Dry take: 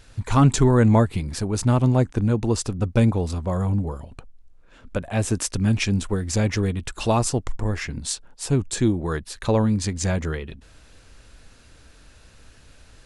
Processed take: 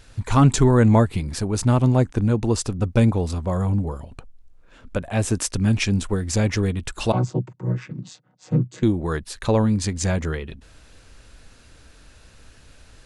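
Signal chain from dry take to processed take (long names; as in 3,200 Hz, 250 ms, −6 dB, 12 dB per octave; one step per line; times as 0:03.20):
0:07.12–0:08.83: channel vocoder with a chord as carrier major triad, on B2
level +1 dB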